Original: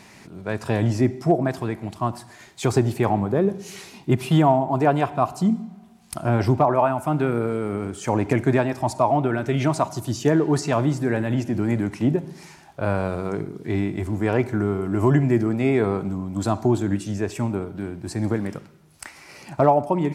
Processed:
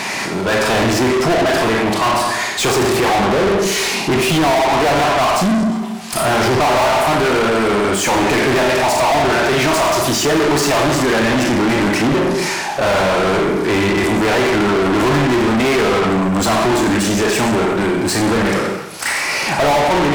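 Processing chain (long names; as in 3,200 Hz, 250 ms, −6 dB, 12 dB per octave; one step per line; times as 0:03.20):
four-comb reverb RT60 0.75 s, combs from 28 ms, DRR 3 dB
mid-hump overdrive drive 40 dB, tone 5,700 Hz, clips at −3.5 dBFS
level −4.5 dB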